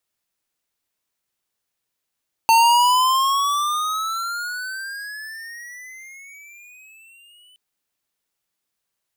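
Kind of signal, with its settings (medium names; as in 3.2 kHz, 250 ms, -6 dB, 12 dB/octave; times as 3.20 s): gliding synth tone square, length 5.07 s, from 899 Hz, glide +21 st, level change -39 dB, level -12.5 dB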